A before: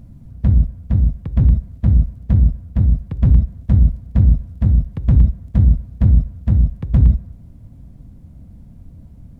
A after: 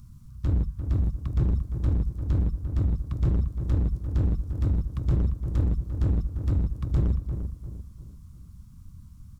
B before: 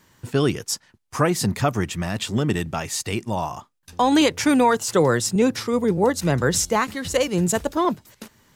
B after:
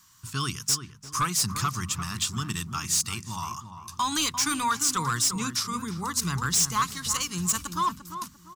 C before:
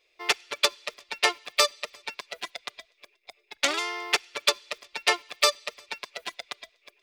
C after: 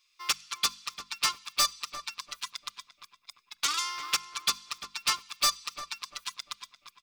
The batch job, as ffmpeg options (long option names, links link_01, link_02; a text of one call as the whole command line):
ffmpeg -i in.wav -filter_complex "[0:a]firequalizer=gain_entry='entry(130,0);entry(570,-27);entry(1100,9);entry(1800,-3);entry(2800,3);entry(5600,12);entry(12000,10)':delay=0.05:min_phase=1,volume=13.5dB,asoftclip=hard,volume=-13.5dB,bandreject=frequency=50:width_type=h:width=6,bandreject=frequency=100:width_type=h:width=6,bandreject=frequency=150:width_type=h:width=6,bandreject=frequency=200:width_type=h:width=6,bandreject=frequency=250:width_type=h:width=6,asplit=2[link_01][link_02];[link_02]adelay=346,lowpass=frequency=1300:poles=1,volume=-8dB,asplit=2[link_03][link_04];[link_04]adelay=346,lowpass=frequency=1300:poles=1,volume=0.38,asplit=2[link_05][link_06];[link_06]adelay=346,lowpass=frequency=1300:poles=1,volume=0.38,asplit=2[link_07][link_08];[link_08]adelay=346,lowpass=frequency=1300:poles=1,volume=0.38[link_09];[link_01][link_03][link_05][link_07][link_09]amix=inputs=5:normalize=0,volume=-6dB" out.wav